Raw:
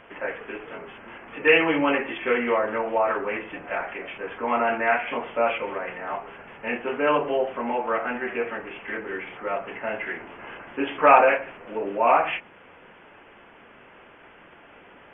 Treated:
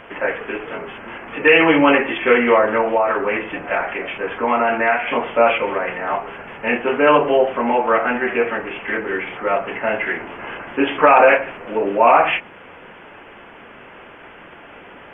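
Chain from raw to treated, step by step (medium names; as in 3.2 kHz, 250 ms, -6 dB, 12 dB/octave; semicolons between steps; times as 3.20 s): 2.85–5.15 s: compression 2.5:1, threshold -24 dBFS, peak gain reduction 5.5 dB; loudness maximiser +10 dB; trim -1 dB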